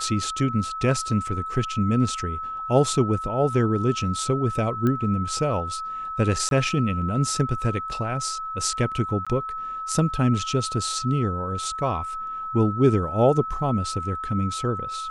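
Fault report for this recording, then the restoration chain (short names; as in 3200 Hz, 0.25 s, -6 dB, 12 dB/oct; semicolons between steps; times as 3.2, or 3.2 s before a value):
tone 1300 Hz -29 dBFS
4.87 pop -14 dBFS
6.49–6.51 gap 22 ms
9.25–9.27 gap 16 ms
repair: de-click; notch 1300 Hz, Q 30; interpolate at 6.49, 22 ms; interpolate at 9.25, 16 ms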